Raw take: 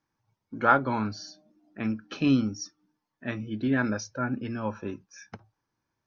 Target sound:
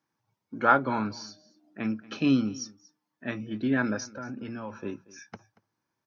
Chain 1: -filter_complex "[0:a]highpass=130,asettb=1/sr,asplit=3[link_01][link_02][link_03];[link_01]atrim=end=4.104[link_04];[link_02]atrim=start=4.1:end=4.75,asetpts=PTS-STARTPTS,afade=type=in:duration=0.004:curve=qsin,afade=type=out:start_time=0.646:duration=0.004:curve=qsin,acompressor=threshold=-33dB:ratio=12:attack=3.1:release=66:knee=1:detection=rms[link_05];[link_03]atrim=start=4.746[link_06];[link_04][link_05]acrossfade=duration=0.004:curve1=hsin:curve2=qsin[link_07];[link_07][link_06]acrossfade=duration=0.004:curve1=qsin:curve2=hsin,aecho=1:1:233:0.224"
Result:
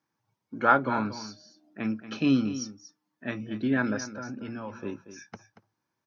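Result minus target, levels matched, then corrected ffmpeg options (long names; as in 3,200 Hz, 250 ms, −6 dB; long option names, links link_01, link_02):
echo-to-direct +8 dB
-filter_complex "[0:a]highpass=130,asettb=1/sr,asplit=3[link_01][link_02][link_03];[link_01]atrim=end=4.104[link_04];[link_02]atrim=start=4.1:end=4.75,asetpts=PTS-STARTPTS,afade=type=in:duration=0.004:curve=qsin,afade=type=out:start_time=0.646:duration=0.004:curve=qsin,acompressor=threshold=-33dB:ratio=12:attack=3.1:release=66:knee=1:detection=rms[link_05];[link_03]atrim=start=4.746[link_06];[link_04][link_05]acrossfade=duration=0.004:curve1=hsin:curve2=qsin[link_07];[link_07][link_06]acrossfade=duration=0.004:curve1=qsin:curve2=hsin,aecho=1:1:233:0.0891"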